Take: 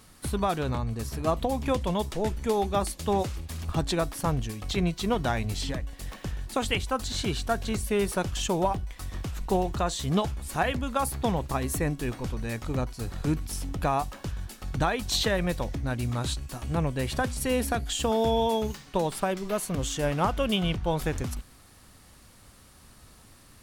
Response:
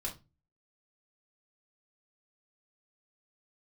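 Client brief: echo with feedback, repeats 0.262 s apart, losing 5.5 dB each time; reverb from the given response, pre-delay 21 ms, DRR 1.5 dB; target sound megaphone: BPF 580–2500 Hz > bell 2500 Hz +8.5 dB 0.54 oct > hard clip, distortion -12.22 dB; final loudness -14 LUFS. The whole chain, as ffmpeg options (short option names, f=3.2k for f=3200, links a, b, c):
-filter_complex "[0:a]aecho=1:1:262|524|786|1048|1310|1572|1834:0.531|0.281|0.149|0.079|0.0419|0.0222|0.0118,asplit=2[a][b];[1:a]atrim=start_sample=2205,adelay=21[c];[b][c]afir=irnorm=-1:irlink=0,volume=-2dB[d];[a][d]amix=inputs=2:normalize=0,highpass=580,lowpass=2.5k,equalizer=f=2.5k:t=o:w=0.54:g=8.5,asoftclip=type=hard:threshold=-23.5dB,volume=16.5dB"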